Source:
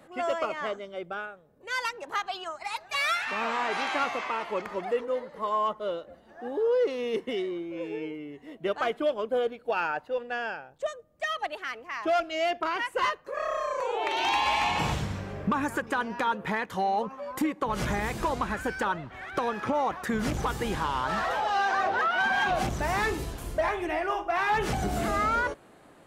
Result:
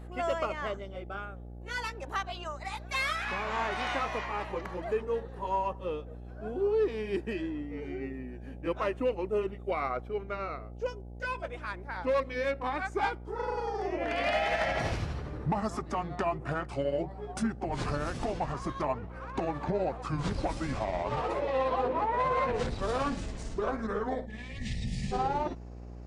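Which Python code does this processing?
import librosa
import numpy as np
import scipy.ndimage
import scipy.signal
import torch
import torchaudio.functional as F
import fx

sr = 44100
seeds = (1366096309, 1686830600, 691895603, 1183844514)

y = fx.pitch_glide(x, sr, semitones=-8.5, runs='starting unshifted')
y = fx.spec_box(y, sr, start_s=24.26, length_s=0.86, low_hz=250.0, high_hz=1700.0, gain_db=-28)
y = fx.dmg_buzz(y, sr, base_hz=60.0, harmonics=14, level_db=-42.0, tilt_db=-7, odd_only=False)
y = y * librosa.db_to_amplitude(-2.0)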